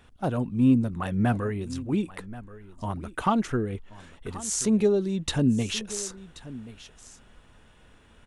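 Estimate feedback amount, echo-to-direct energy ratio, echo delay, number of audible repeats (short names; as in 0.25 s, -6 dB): no steady repeat, -17.0 dB, 1.081 s, 1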